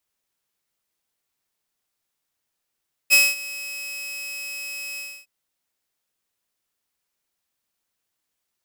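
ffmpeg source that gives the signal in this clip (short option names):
-f lavfi -i "aevalsrc='0.398*(2*mod(2560*t,1)-1)':d=2.159:s=44100,afade=t=in:d=0.033,afade=t=out:st=0.033:d=0.216:silence=0.1,afade=t=out:st=1.88:d=0.279"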